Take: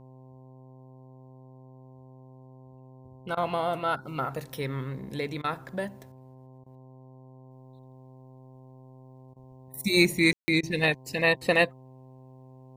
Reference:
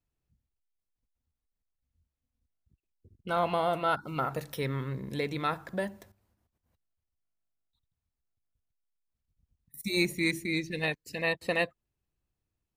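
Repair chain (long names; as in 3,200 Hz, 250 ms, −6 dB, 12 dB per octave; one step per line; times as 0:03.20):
hum removal 129.9 Hz, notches 8
ambience match 0:10.33–0:10.48
repair the gap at 0:03.35/0:05.42/0:06.64/0:09.34/0:10.61, 20 ms
level 0 dB, from 0:07.51 −6.5 dB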